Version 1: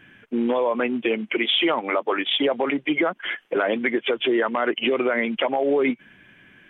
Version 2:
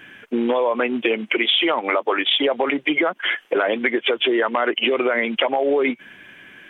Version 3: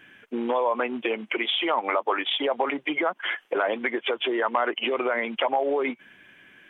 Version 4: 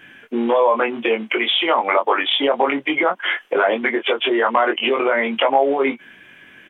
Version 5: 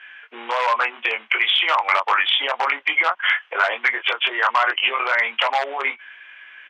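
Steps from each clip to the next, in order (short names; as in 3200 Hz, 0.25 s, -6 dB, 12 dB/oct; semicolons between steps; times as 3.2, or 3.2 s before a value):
tone controls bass -9 dB, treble +4 dB; compressor 2.5:1, threshold -26 dBFS, peak gain reduction 7 dB; gain +8 dB
dynamic EQ 930 Hz, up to +8 dB, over -35 dBFS, Q 1.1; gain -8.5 dB
doubler 22 ms -4 dB; gain +6 dB
in parallel at -7.5 dB: wrapped overs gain 8.5 dB; on the sum: Butterworth band-pass 1800 Hz, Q 0.74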